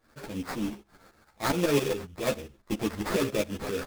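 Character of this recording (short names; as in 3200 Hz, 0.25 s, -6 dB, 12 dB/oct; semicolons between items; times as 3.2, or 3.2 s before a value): aliases and images of a low sample rate 3000 Hz, jitter 20%; tremolo saw up 7.3 Hz, depth 75%; a shimmering, thickened sound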